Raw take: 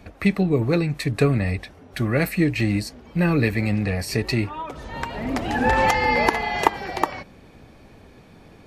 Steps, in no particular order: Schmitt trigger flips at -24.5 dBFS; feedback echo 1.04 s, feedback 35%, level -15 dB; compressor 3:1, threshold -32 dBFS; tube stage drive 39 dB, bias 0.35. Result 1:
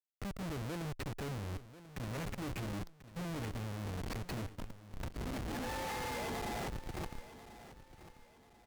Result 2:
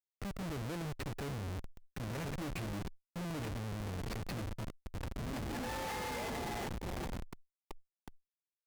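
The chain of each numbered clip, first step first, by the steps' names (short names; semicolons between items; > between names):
Schmitt trigger > compressor > tube stage > feedback echo; feedback echo > Schmitt trigger > tube stage > compressor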